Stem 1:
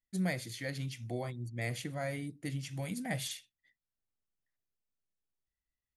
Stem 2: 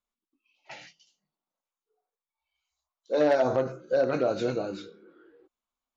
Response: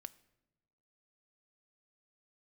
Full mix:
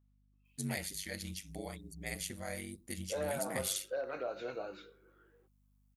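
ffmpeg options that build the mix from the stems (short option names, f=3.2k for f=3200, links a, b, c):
-filter_complex "[0:a]bandreject=f=60:t=h:w=6,bandreject=f=120:t=h:w=6,aeval=exprs='val(0)*sin(2*PI*49*n/s)':c=same,adelay=450,volume=-3dB[a];[1:a]acrossover=split=450 3000:gain=0.2 1 0.0794[b][c][d];[b][c][d]amix=inputs=3:normalize=0,alimiter=limit=-22.5dB:level=0:latency=1:release=410,aeval=exprs='val(0)+0.000708*(sin(2*PI*50*n/s)+sin(2*PI*2*50*n/s)/2+sin(2*PI*3*50*n/s)/3+sin(2*PI*4*50*n/s)/4+sin(2*PI*5*50*n/s)/5)':c=same,volume=-6.5dB[e];[a][e]amix=inputs=2:normalize=0,crystalizer=i=3:c=0"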